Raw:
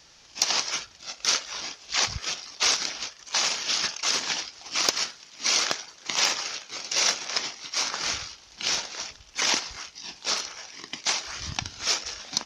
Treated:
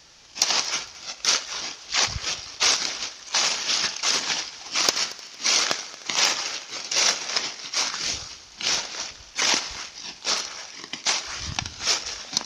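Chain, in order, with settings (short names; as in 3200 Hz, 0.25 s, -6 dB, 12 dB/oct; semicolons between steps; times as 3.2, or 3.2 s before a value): 7.88–8.29 bell 440 Hz -> 2900 Hz -12.5 dB 1.2 oct; multi-head echo 76 ms, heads first and third, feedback 54%, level -20 dB; gain +2.5 dB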